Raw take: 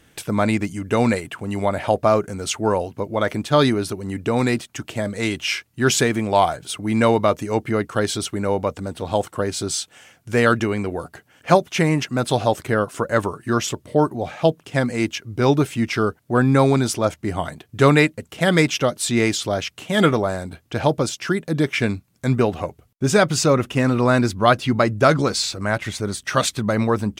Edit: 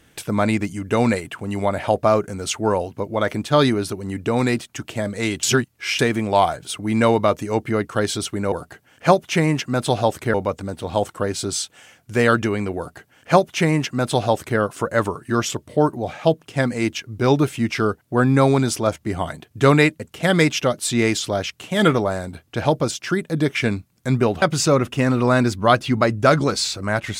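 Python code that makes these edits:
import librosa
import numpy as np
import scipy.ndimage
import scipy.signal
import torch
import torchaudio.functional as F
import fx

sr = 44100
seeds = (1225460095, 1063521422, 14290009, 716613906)

y = fx.edit(x, sr, fx.reverse_span(start_s=5.43, length_s=0.56),
    fx.duplicate(start_s=10.95, length_s=1.82, to_s=8.52),
    fx.cut(start_s=22.6, length_s=0.6), tone=tone)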